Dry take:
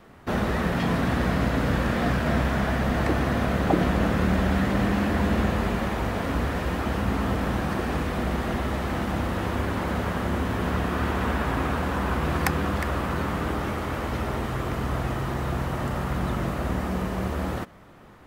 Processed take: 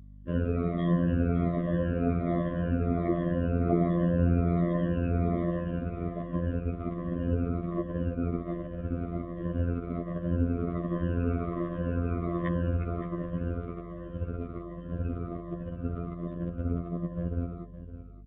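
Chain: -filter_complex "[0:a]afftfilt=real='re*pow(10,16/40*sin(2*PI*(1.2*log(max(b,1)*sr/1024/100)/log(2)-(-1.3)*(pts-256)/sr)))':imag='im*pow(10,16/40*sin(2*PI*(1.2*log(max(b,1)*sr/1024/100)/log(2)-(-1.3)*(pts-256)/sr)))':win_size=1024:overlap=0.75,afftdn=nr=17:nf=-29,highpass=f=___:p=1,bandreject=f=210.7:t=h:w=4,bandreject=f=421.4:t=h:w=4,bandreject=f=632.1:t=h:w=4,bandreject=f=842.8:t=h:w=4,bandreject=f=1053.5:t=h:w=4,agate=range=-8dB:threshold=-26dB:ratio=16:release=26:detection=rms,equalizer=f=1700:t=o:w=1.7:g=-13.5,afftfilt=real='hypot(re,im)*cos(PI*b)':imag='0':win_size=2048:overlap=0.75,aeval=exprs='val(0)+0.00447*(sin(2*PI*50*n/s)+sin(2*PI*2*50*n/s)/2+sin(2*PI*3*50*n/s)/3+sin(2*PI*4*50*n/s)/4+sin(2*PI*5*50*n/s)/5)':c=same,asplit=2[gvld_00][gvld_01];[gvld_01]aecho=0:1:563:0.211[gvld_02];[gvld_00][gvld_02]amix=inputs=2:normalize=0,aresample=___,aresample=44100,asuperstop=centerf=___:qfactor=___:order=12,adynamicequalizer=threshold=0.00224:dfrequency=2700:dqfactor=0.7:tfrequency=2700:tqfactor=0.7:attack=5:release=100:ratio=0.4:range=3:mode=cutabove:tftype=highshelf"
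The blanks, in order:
68, 8000, 840, 2.7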